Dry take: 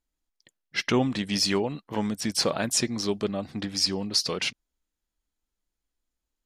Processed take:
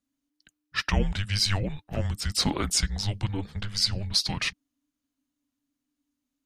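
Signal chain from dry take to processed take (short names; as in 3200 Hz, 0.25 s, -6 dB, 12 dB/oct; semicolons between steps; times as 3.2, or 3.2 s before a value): frequency shift -300 Hz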